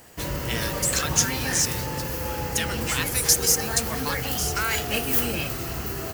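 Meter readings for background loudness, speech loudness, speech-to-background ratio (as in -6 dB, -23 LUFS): -26.5 LUFS, -25.0 LUFS, 1.5 dB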